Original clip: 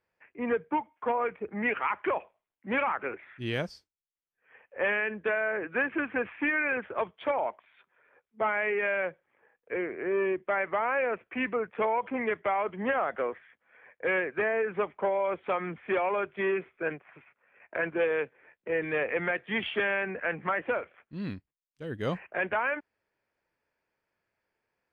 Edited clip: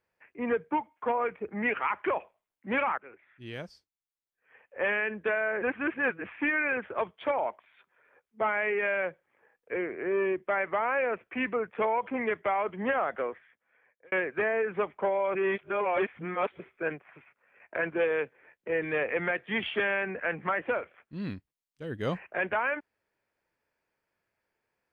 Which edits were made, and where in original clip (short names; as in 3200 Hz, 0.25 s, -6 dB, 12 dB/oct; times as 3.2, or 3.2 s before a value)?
2.98–5.04 fade in, from -17.5 dB
5.62–6.24 reverse
13.08–14.12 fade out
15.35–16.6 reverse